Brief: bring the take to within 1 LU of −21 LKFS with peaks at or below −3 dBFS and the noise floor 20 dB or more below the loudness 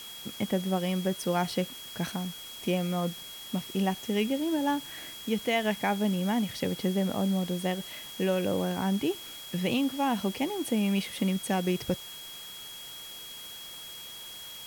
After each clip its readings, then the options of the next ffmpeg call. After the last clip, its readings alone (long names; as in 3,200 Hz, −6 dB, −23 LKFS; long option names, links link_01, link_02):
interfering tone 3,300 Hz; level of the tone −43 dBFS; background noise floor −44 dBFS; target noise floor −51 dBFS; integrated loudness −31.0 LKFS; sample peak −14.5 dBFS; target loudness −21.0 LKFS
→ -af "bandreject=frequency=3300:width=30"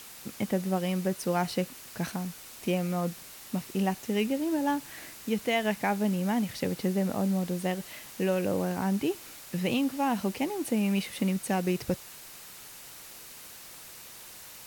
interfering tone none found; background noise floor −47 dBFS; target noise floor −50 dBFS
→ -af "afftdn=noise_reduction=6:noise_floor=-47"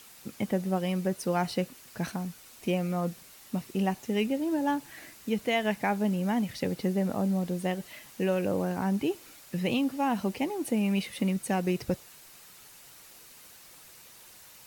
background noise floor −52 dBFS; integrated loudness −30.5 LKFS; sample peak −15.0 dBFS; target loudness −21.0 LKFS
→ -af "volume=9.5dB"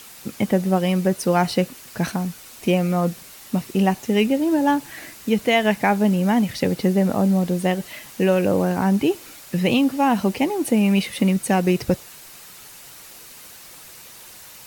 integrated loudness −21.0 LKFS; sample peak −5.5 dBFS; background noise floor −43 dBFS